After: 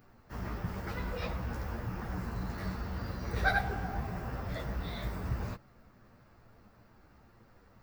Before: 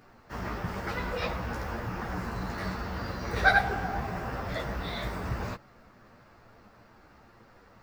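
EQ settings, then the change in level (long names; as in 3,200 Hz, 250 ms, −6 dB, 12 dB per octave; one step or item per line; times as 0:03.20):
low-shelf EQ 250 Hz +8.5 dB
high-shelf EQ 12,000 Hz +12 dB
−8.0 dB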